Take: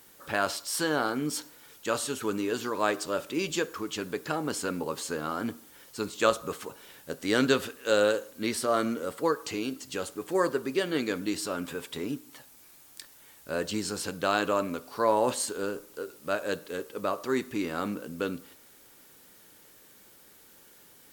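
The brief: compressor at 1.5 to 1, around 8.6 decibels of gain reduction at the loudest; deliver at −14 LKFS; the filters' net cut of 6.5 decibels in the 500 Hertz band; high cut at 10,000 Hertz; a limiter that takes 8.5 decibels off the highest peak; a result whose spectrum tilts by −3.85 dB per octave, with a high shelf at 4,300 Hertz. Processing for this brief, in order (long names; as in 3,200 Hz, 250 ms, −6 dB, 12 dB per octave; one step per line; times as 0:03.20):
low-pass filter 10,000 Hz
parametric band 500 Hz −8 dB
high-shelf EQ 4,300 Hz +6.5 dB
downward compressor 1.5 to 1, threshold −45 dBFS
level +26 dB
brickwall limiter −1 dBFS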